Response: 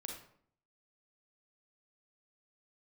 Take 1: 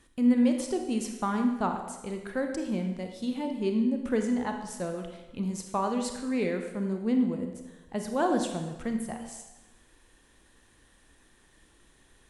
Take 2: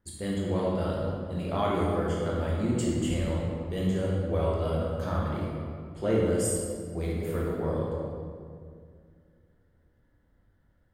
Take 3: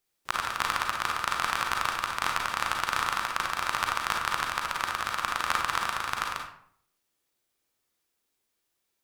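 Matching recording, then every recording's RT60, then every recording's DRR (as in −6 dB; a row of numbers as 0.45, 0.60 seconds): 3; 1.1, 2.2, 0.60 seconds; 4.5, −4.5, 0.5 decibels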